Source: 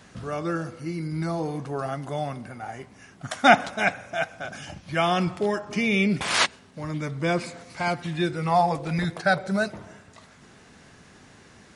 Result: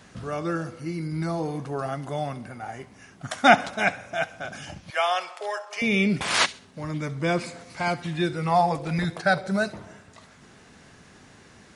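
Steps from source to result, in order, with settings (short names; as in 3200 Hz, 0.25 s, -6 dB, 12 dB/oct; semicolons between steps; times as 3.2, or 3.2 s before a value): 4.9–5.82 inverse Chebyshev high-pass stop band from 270 Hz, stop band 40 dB; on a send: thin delay 67 ms, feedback 30%, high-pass 2700 Hz, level -15.5 dB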